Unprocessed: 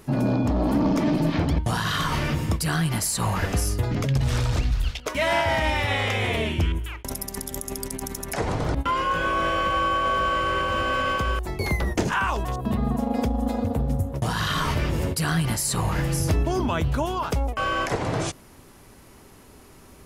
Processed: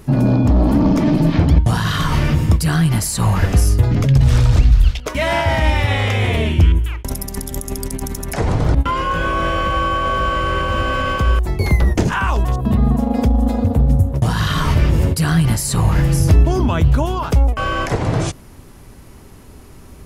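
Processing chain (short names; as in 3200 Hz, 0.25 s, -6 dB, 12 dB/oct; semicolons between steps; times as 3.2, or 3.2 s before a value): low shelf 190 Hz +10 dB; gain +3.5 dB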